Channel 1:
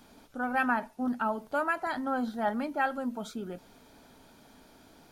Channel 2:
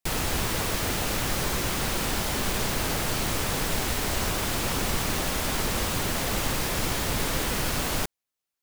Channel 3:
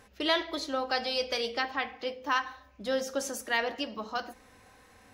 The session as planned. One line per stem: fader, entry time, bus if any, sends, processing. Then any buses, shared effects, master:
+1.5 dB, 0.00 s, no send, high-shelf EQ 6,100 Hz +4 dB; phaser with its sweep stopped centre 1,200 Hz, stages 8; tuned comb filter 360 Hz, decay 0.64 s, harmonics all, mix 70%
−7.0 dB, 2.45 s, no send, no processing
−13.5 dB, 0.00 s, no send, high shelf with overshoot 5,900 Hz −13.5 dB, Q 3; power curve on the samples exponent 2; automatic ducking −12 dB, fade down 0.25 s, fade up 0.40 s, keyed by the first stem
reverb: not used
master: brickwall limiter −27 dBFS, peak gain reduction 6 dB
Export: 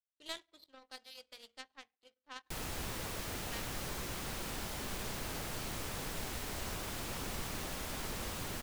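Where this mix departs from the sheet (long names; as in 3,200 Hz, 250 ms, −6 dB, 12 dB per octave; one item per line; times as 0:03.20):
stem 1: muted
stem 2 −7.0 dB → −13.5 dB
master: missing brickwall limiter −27 dBFS, peak gain reduction 6 dB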